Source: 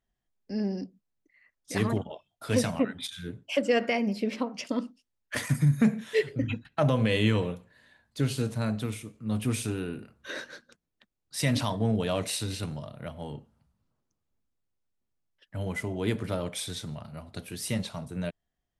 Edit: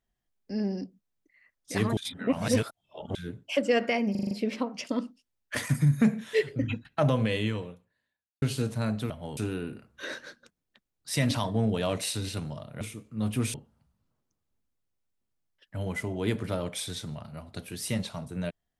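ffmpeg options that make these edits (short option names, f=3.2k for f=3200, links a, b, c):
-filter_complex "[0:a]asplit=13[a][b][c][d][e][f][g][h][i][j][k][l][m];[a]atrim=end=1.972[n];[b]atrim=start=1.968:end=3.152,asetpts=PTS-STARTPTS,areverse[o];[c]atrim=start=3.148:end=4.152[p];[d]atrim=start=4.108:end=4.152[q];[e]atrim=start=4.108:end=4.152[r];[f]atrim=start=4.108:end=4.152[s];[g]atrim=start=4.108:end=4.152[t];[h]atrim=start=4.108:end=8.22,asetpts=PTS-STARTPTS,afade=t=out:st=2.812:d=1.3:c=qua[u];[i]atrim=start=8.22:end=8.902,asetpts=PTS-STARTPTS,afade=t=in:d=0.004:c=hsin[v];[j]atrim=start=13.068:end=13.342[w];[k]atrim=start=9.628:end=13.072[x];[l]atrim=start=8.898:end=9.632[y];[m]atrim=start=13.338[z];[n][o]acrossfade=d=0.004:c1=hsin:c2=hsin[aa];[aa][p]acrossfade=d=0.004:c1=hsin:c2=hsin[ab];[ab][q]acrossfade=d=0.004:c1=hsin:c2=hsin[ac];[ac][r]acrossfade=d=0.004:c1=hsin:c2=hsin[ad];[ad][s]acrossfade=d=0.004:c1=hsin:c2=hsin[ae];[ae][t]acrossfade=d=0.004:c1=hsin:c2=hsin[af];[u][v]concat=n=2:v=0:a=1[ag];[af][ag]acrossfade=d=0.004:c1=hsin:c2=hsin[ah];[ah][w]acrossfade=d=0.004:c1=hsin:c2=hsin[ai];[ai][x]acrossfade=d=0.004:c1=hsin:c2=hsin[aj];[aj][y]acrossfade=d=0.004:c1=hsin:c2=hsin[ak];[ak][z]acrossfade=d=0.004:c1=hsin:c2=hsin"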